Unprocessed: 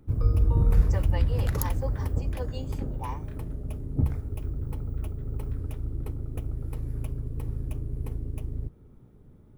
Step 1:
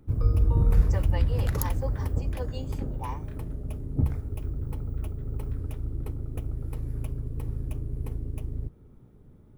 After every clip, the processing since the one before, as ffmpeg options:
-af anull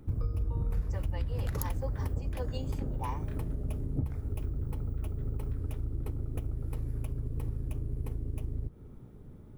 -af "acompressor=threshold=-33dB:ratio=5,volume=3.5dB"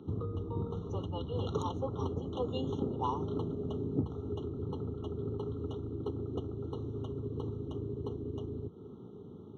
-af "highpass=f=110:w=0.5412,highpass=f=110:w=1.3066,equalizer=f=130:t=q:w=4:g=-9,equalizer=f=410:t=q:w=4:g=8,equalizer=f=590:t=q:w=4:g=-8,equalizer=f=4.6k:t=q:w=4:g=8,lowpass=f=5k:w=0.5412,lowpass=f=5k:w=1.3066,afftfilt=real='re*eq(mod(floor(b*sr/1024/1400),2),0)':imag='im*eq(mod(floor(b*sr/1024/1400),2),0)':win_size=1024:overlap=0.75,volume=5dB"

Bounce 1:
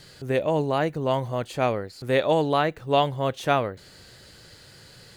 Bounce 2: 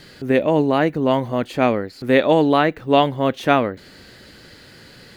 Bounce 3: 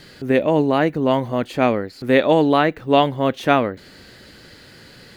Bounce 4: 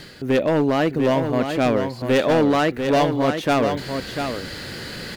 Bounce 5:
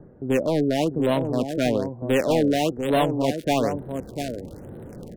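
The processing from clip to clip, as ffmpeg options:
-af "equalizer=f=125:t=o:w=1:g=-4,equalizer=f=250:t=o:w=1:g=9,equalizer=f=2k:t=o:w=1:g=4,equalizer=f=8k:t=o:w=1:g=-6,volume=4dB"
-af anull
-af "areverse,acompressor=mode=upward:threshold=-22dB:ratio=2.5,areverse,volume=13.5dB,asoftclip=hard,volume=-13.5dB,aecho=1:1:695:0.447"
-filter_complex "[0:a]acrossover=split=230|860[a][b][c];[c]acrusher=bits=3:mix=0:aa=0.5[d];[a][b][d]amix=inputs=3:normalize=0,afftfilt=real='re*(1-between(b*sr/1024,950*pow(6000/950,0.5+0.5*sin(2*PI*1.1*pts/sr))/1.41,950*pow(6000/950,0.5+0.5*sin(2*PI*1.1*pts/sr))*1.41))':imag='im*(1-between(b*sr/1024,950*pow(6000/950,0.5+0.5*sin(2*PI*1.1*pts/sr))/1.41,950*pow(6000/950,0.5+0.5*sin(2*PI*1.1*pts/sr))*1.41))':win_size=1024:overlap=0.75,volume=-2.5dB"

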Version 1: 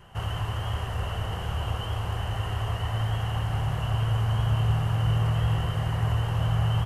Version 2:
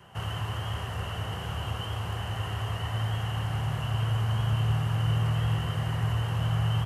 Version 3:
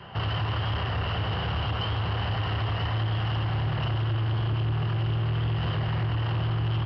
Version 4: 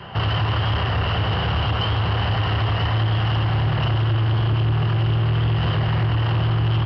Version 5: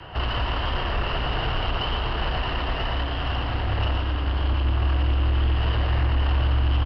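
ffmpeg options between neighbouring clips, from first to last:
-filter_complex "[0:a]highpass=96,acrossover=split=350|1100[a][b][c];[b]alimiter=level_in=14dB:limit=-24dB:level=0:latency=1,volume=-14dB[d];[a][d][c]amix=inputs=3:normalize=0"
-af "acompressor=threshold=-28dB:ratio=6,aresample=11025,asoftclip=type=tanh:threshold=-32dB,aresample=44100,volume=9dB"
-af "acontrast=81"
-af "afreqshift=-45,aecho=1:1:116:0.501,volume=-3.5dB"

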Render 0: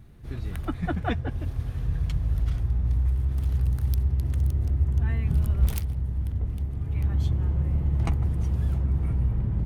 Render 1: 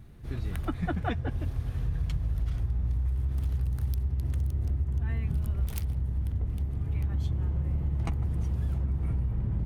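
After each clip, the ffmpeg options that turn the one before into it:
-af "acompressor=threshold=-25dB:ratio=6"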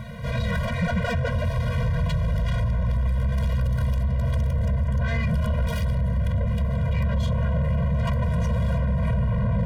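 -filter_complex "[0:a]asplit=2[a][b];[b]highpass=f=720:p=1,volume=37dB,asoftclip=type=tanh:threshold=-13.5dB[c];[a][c]amix=inputs=2:normalize=0,lowpass=f=1.7k:p=1,volume=-6dB,afftfilt=real='re*eq(mod(floor(b*sr/1024/230),2),0)':imag='im*eq(mod(floor(b*sr/1024/230),2),0)':win_size=1024:overlap=0.75"

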